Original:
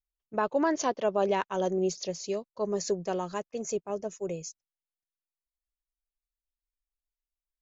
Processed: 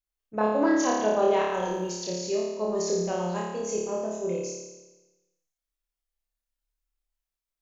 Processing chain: 1.43–1.89 s: crackle 130 per s -51 dBFS; flutter echo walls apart 4.8 m, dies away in 1.1 s; trim -1.5 dB

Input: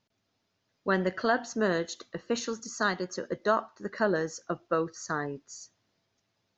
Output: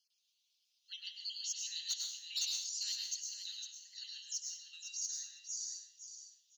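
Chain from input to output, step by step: random holes in the spectrogram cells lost 36%; steep high-pass 2.9 kHz 48 dB/octave; in parallel at -8.5 dB: wavefolder -36 dBFS; on the sum: short-mantissa float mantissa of 6-bit; on a send: feedback delay 506 ms, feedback 17%, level -9 dB; on the sum: plate-style reverb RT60 0.52 s, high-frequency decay 1×, pre-delay 90 ms, DRR 1 dB; trim +1 dB

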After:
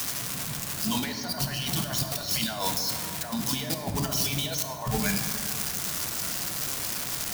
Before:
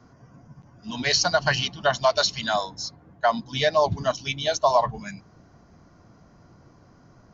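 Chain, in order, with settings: zero-crossing glitches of -25 dBFS; compressor with a negative ratio -33 dBFS, ratio -1; reverberation RT60 2.6 s, pre-delay 17 ms, DRR 4.5 dB; trim +1.5 dB

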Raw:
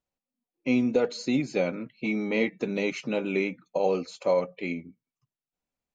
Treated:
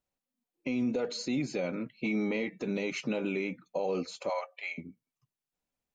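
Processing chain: 4.29–4.78 s: Chebyshev high-pass 670 Hz, order 4; peak limiter -23 dBFS, peak gain reduction 10 dB

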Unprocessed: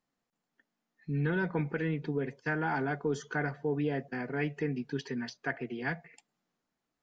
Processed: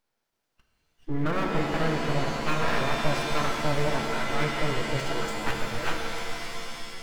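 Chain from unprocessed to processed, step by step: full-wave rectifier; formant shift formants -4 st; pitch-shifted reverb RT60 2.9 s, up +7 st, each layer -2 dB, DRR 2 dB; trim +6.5 dB

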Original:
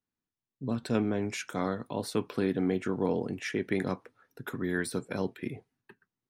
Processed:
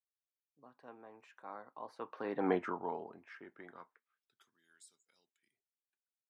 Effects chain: Doppler pass-by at 2.51 s, 25 m/s, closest 2.2 m; band-pass sweep 970 Hz -> 6.8 kHz, 3.67–4.60 s; trim +13 dB

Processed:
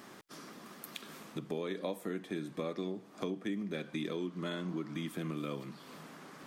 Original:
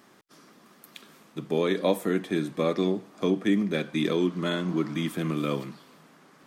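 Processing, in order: compression 3:1, threshold -45 dBFS, peak gain reduction 19.5 dB; trim +4.5 dB

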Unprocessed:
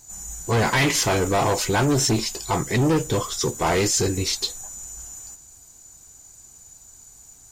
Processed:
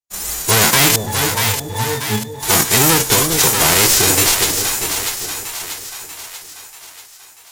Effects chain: formants flattened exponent 0.3; gate -37 dBFS, range -56 dB; 0.96–2.43 s: pitch-class resonator A, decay 0.15 s; in parallel at -9.5 dB: word length cut 6-bit, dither none; on the sum: wow and flutter 58 cents; on a send: two-band feedback delay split 680 Hz, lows 402 ms, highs 638 ms, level -9 dB; on the sum: loudness maximiser +9.5 dB; trim -1 dB

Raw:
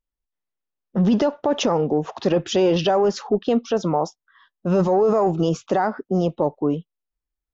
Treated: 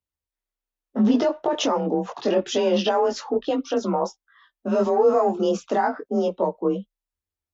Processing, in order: bass shelf 71 Hz -12 dB; chorus voices 2, 0.27 Hz, delay 20 ms, depth 2.4 ms; frequency shift +32 Hz; trim +2 dB

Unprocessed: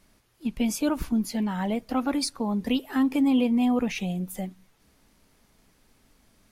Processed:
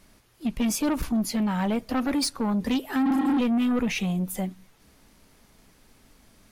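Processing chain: spectral replace 3.08–3.36 s, 250–4700 Hz before; saturation -25 dBFS, distortion -10 dB; trim +5 dB

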